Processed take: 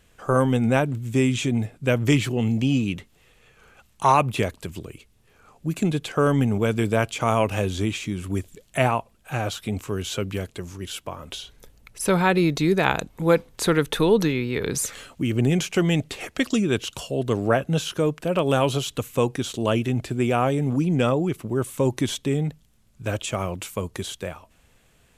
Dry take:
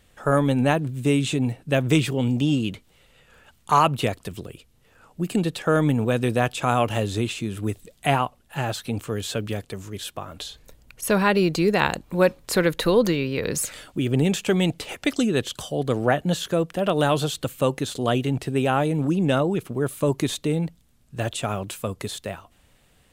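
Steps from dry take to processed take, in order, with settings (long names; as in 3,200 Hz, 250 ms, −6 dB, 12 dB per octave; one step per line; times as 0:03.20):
wrong playback speed 48 kHz file played as 44.1 kHz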